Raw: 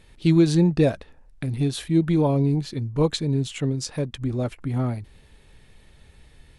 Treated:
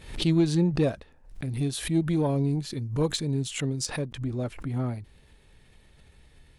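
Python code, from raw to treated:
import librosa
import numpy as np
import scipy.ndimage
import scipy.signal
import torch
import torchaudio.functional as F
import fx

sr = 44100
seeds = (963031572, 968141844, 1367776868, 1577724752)

y = fx.diode_clip(x, sr, knee_db=-7.5)
y = fx.high_shelf(y, sr, hz=fx.line((1.5, 9000.0), (3.85, 5700.0)), db=10.5, at=(1.5, 3.85), fade=0.02)
y = fx.pre_swell(y, sr, db_per_s=110.0)
y = y * 10.0 ** (-4.5 / 20.0)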